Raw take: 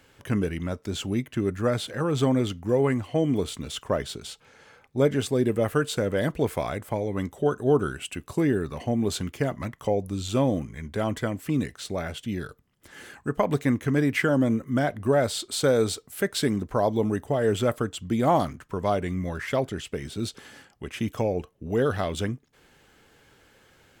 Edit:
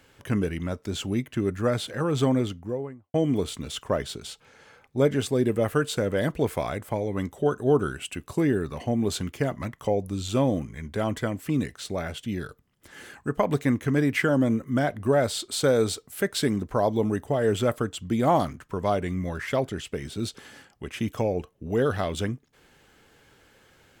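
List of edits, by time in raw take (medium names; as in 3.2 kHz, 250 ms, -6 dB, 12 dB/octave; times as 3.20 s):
2.26–3.14 s: studio fade out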